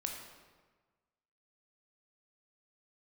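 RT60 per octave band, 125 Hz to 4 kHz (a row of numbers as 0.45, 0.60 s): 1.6, 1.4, 1.4, 1.4, 1.2, 1.0 s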